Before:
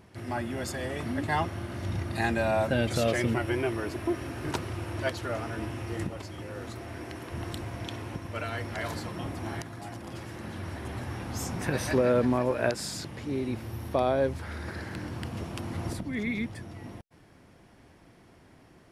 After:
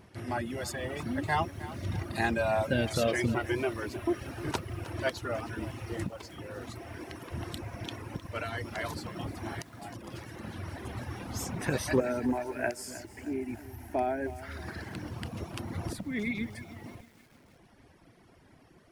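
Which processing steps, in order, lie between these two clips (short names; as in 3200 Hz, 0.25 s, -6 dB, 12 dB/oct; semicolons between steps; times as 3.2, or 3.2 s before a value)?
notch 7400 Hz, Q 27; reverb removal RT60 1.2 s; 12–14.42 fixed phaser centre 770 Hz, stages 8; lo-fi delay 0.31 s, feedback 55%, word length 8-bit, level -15 dB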